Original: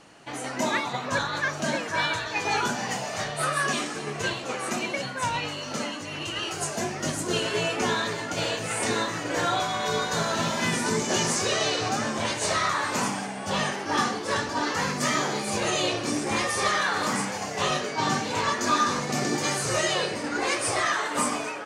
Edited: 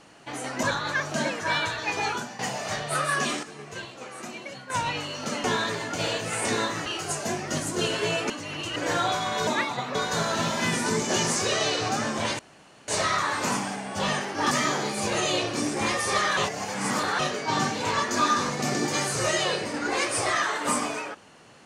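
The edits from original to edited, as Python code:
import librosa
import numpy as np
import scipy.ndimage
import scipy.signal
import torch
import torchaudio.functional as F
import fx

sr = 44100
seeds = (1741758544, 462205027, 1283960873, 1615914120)

y = fx.edit(x, sr, fx.move(start_s=0.63, length_s=0.48, to_s=9.95),
    fx.fade_out_to(start_s=2.4, length_s=0.47, floor_db=-13.5),
    fx.clip_gain(start_s=3.91, length_s=1.27, db=-9.0),
    fx.swap(start_s=5.92, length_s=0.46, other_s=7.82, other_length_s=1.42),
    fx.insert_room_tone(at_s=12.39, length_s=0.49),
    fx.cut(start_s=14.02, length_s=0.99),
    fx.reverse_span(start_s=16.87, length_s=0.82), tone=tone)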